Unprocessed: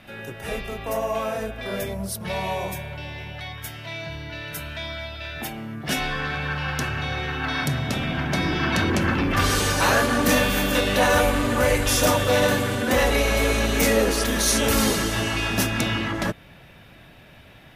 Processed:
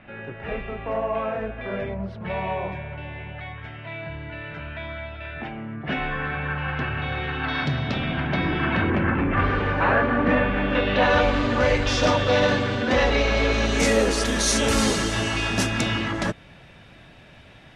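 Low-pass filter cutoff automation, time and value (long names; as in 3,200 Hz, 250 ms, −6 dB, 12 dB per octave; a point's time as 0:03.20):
low-pass filter 24 dB per octave
0:06.62 2,600 Hz
0:07.80 4,500 Hz
0:09.14 2,300 Hz
0:10.54 2,300 Hz
0:11.36 5,100 Hz
0:13.50 5,100 Hz
0:13.91 9,000 Hz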